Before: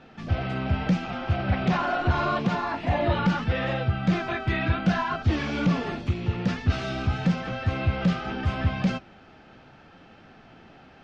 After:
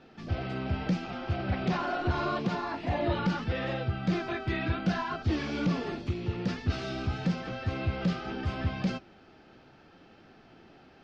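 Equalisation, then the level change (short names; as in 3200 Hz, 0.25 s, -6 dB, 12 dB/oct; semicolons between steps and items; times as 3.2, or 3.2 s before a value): bell 360 Hz +6 dB 0.75 oct; bell 4800 Hz +5.5 dB 0.65 oct; -6.5 dB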